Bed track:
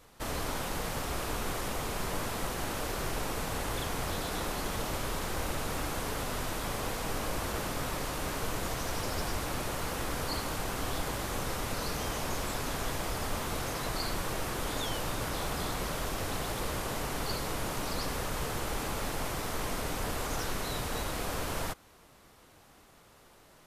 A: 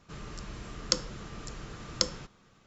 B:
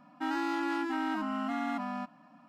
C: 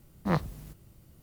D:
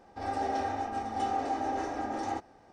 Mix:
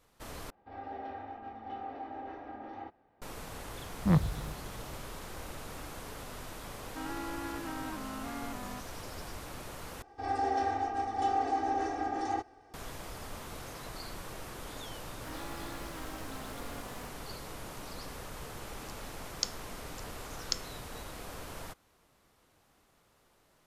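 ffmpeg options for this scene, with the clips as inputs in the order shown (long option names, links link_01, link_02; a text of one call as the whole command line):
ffmpeg -i bed.wav -i cue0.wav -i cue1.wav -i cue2.wav -i cue3.wav -filter_complex "[4:a]asplit=2[link_01][link_02];[2:a]asplit=2[link_03][link_04];[0:a]volume=-9.5dB[link_05];[link_01]lowpass=frequency=3400:width=0.5412,lowpass=frequency=3400:width=1.3066[link_06];[3:a]bass=frequency=250:gain=12,treble=frequency=4000:gain=-6[link_07];[link_02]aecho=1:1:2.6:0.71[link_08];[link_04]acrusher=bits=5:dc=4:mix=0:aa=0.000001[link_09];[1:a]tiltshelf=frequency=970:gain=-6.5[link_10];[link_05]asplit=3[link_11][link_12][link_13];[link_11]atrim=end=0.504[link_14];[link_06]atrim=end=2.72,asetpts=PTS-STARTPTS,volume=-10.5dB[link_15];[link_12]atrim=start=3.216:end=10.024[link_16];[link_08]atrim=end=2.72,asetpts=PTS-STARTPTS,volume=-3dB[link_17];[link_13]atrim=start=12.736[link_18];[link_07]atrim=end=1.22,asetpts=PTS-STARTPTS,volume=-5.5dB,afade=type=in:duration=0.004:curve=hsin,afade=type=out:start_time=1.216:duration=0.004:curve=hsin,adelay=3800[link_19];[link_03]atrim=end=2.48,asetpts=PTS-STARTPTS,volume=-8dB,afade=type=in:duration=0.004:curve=hsin,afade=type=out:start_time=2.476:duration=0.004:curve=hsin,adelay=6750[link_20];[link_09]atrim=end=2.48,asetpts=PTS-STARTPTS,volume=-9.5dB,afade=type=in:duration=0.004:curve=hsin,afade=type=out:start_time=2.476:duration=0.004:curve=hsin,adelay=15040[link_21];[link_10]atrim=end=2.66,asetpts=PTS-STARTPTS,volume=-11.5dB,afade=type=in:duration=0.004:curve=hsin,afade=type=out:start_time=2.656:duration=0.004:curve=hsin,adelay=18510[link_22];[link_14][link_15]acrossfade=duration=0.004:curve1=hsin:curve2=hsin[link_23];[link_23][link_16]acrossfade=duration=0.004:curve1=hsin:curve2=hsin[link_24];[link_24][link_17]acrossfade=duration=0.004:curve1=hsin:curve2=hsin[link_25];[link_25][link_18]acrossfade=duration=0.004:curve1=hsin:curve2=hsin[link_26];[link_26][link_19][link_20][link_21][link_22]amix=inputs=5:normalize=0" out.wav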